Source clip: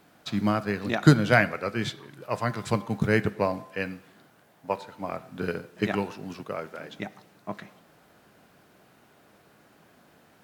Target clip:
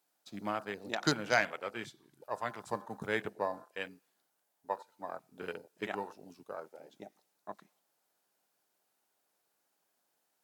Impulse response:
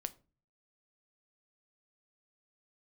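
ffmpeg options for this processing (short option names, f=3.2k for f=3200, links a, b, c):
-af "equalizer=f=860:w=4.4:g=5,afwtdn=0.0178,bass=f=250:g=-14,treble=f=4k:g=15,volume=-8.5dB"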